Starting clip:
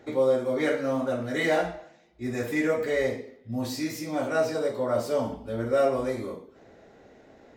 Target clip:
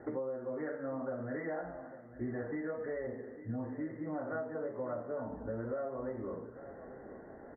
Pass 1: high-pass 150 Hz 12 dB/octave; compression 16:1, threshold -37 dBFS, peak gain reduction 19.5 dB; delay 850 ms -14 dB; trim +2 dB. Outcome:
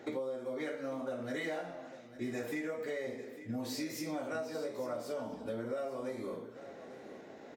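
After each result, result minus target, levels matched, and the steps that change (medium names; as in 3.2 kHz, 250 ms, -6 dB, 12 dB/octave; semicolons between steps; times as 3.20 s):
125 Hz band -4.5 dB; 2 kHz band +3.0 dB
remove: high-pass 150 Hz 12 dB/octave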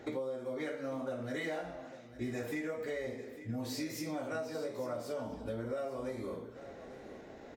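2 kHz band +2.5 dB
add after compression: steep low-pass 1.9 kHz 96 dB/octave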